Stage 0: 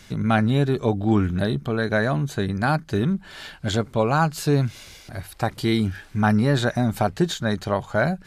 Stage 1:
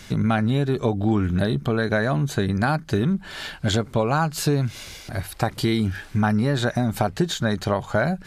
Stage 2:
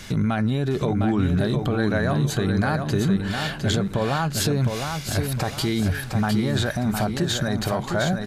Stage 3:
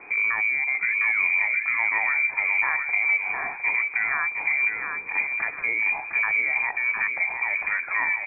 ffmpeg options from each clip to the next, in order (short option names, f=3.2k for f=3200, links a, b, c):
-af "acompressor=threshold=-23dB:ratio=4,volume=5dB"
-filter_complex "[0:a]alimiter=limit=-18.5dB:level=0:latency=1:release=28,asplit=2[a][b];[b]aecho=0:1:709|1418|2127|2836:0.531|0.186|0.065|0.0228[c];[a][c]amix=inputs=2:normalize=0,volume=3.5dB"
-af "lowpass=f=2.1k:t=q:w=0.5098,lowpass=f=2.1k:t=q:w=0.6013,lowpass=f=2.1k:t=q:w=0.9,lowpass=f=2.1k:t=q:w=2.563,afreqshift=-2500,volume=-2dB"